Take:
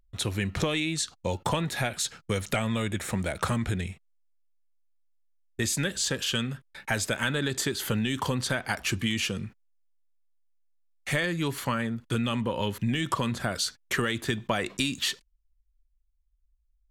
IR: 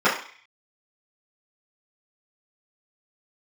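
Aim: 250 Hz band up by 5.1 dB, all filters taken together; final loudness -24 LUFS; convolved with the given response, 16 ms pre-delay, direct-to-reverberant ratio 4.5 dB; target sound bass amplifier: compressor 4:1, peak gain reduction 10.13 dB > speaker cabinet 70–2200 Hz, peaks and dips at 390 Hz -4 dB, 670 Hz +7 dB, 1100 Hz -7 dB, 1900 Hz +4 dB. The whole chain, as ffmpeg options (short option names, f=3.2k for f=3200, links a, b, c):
-filter_complex "[0:a]equalizer=f=250:t=o:g=6.5,asplit=2[a][b];[1:a]atrim=start_sample=2205,adelay=16[c];[b][c]afir=irnorm=-1:irlink=0,volume=-25dB[d];[a][d]amix=inputs=2:normalize=0,acompressor=threshold=-29dB:ratio=4,highpass=f=70:w=0.5412,highpass=f=70:w=1.3066,equalizer=f=390:t=q:w=4:g=-4,equalizer=f=670:t=q:w=4:g=7,equalizer=f=1.1k:t=q:w=4:g=-7,equalizer=f=1.9k:t=q:w=4:g=4,lowpass=f=2.2k:w=0.5412,lowpass=f=2.2k:w=1.3066,volume=9.5dB"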